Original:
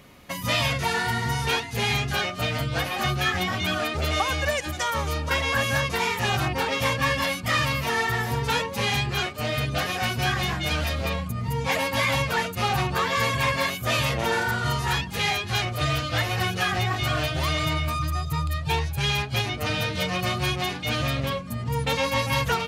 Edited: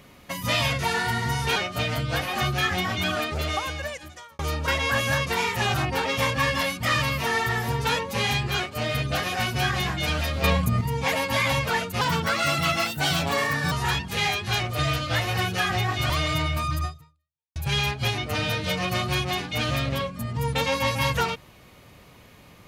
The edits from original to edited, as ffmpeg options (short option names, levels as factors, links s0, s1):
-filter_complex "[0:a]asplit=9[s0][s1][s2][s3][s4][s5][s6][s7][s8];[s0]atrim=end=1.562[s9];[s1]atrim=start=2.188:end=5.02,asetpts=PTS-STARTPTS,afade=t=out:st=1.602:d=1.23[s10];[s2]atrim=start=5.02:end=11.072,asetpts=PTS-STARTPTS,afade=t=in:d=0.004:c=hsin[s11];[s3]atrim=start=11.068:end=11.442,asetpts=PTS-STARTPTS,volume=2.24[s12];[s4]atrim=start=11.438:end=12.644[s13];[s5]atrim=start=12.64:end=14.74,asetpts=PTS-STARTPTS,asetrate=54243,aresample=44100[s14];[s6]atrim=start=14.736:end=17.122[s15];[s7]atrim=start=17.408:end=18.87,asetpts=PTS-STARTPTS,afade=t=out:st=0.752:d=0.71:c=exp[s16];[s8]atrim=start=18.87,asetpts=PTS-STARTPTS,afade=t=in:d=0.004:c=hsin[s17];[s10][s11]concat=n=2:v=0:a=1[s18];[s9][s18]acrossfade=d=0.004:c1=hsin:c2=hsin[s19];[s19][s12]acrossfade=d=0.004:c1=hsin:c2=hsin[s20];[s20][s13]acrossfade=d=0.004:c1=hsin:c2=hsin[s21];[s21][s14]acrossfade=d=0.004:c1=hsin:c2=hsin[s22];[s22][s15]acrossfade=d=0.004:c1=hsin:c2=hsin[s23];[s16][s17]concat=n=2:v=0:a=1[s24];[s23][s24]acrossfade=d=0.004:c1=hsin:c2=hsin"